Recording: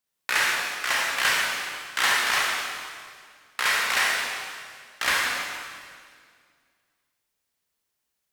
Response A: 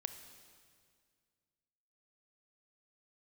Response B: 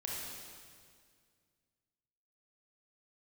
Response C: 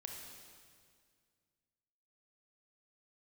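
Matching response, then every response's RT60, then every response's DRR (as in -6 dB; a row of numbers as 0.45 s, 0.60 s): B; 2.0 s, 2.0 s, 2.0 s; 8.5 dB, -4.0 dB, 1.0 dB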